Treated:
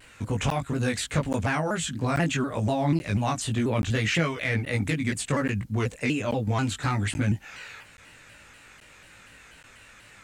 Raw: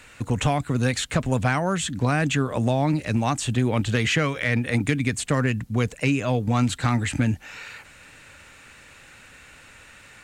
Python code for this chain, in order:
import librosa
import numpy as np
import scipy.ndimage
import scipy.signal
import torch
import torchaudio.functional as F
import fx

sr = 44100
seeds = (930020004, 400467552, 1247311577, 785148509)

y = fx.doubler(x, sr, ms=19.0, db=-2)
y = fx.buffer_crackle(y, sr, first_s=0.5, period_s=0.83, block=512, kind='zero')
y = fx.vibrato_shape(y, sr, shape='saw_down', rate_hz=4.1, depth_cents=160.0)
y = y * librosa.db_to_amplitude(-5.0)